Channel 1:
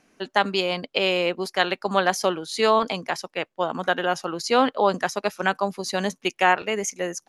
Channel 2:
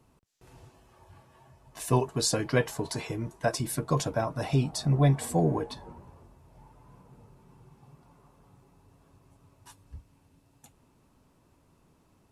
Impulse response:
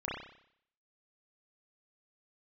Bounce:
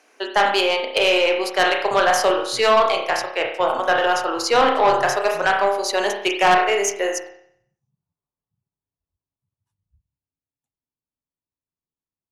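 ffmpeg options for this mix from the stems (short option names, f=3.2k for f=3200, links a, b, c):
-filter_complex "[0:a]highpass=f=370:w=0.5412,highpass=f=370:w=1.3066,aeval=exprs='0.75*(cos(1*acos(clip(val(0)/0.75,-1,1)))-cos(1*PI/2))+0.0168*(cos(6*acos(clip(val(0)/0.75,-1,1)))-cos(6*PI/2))':c=same,volume=2.5dB,asplit=2[a][b];[b]volume=-3dB[c];[1:a]afwtdn=0.00794,volume=-19dB,asplit=2[d][e];[e]volume=-21dB[f];[2:a]atrim=start_sample=2205[g];[c][f]amix=inputs=2:normalize=0[h];[h][g]afir=irnorm=-1:irlink=0[i];[a][d][i]amix=inputs=3:normalize=0,asoftclip=type=tanh:threshold=-9dB"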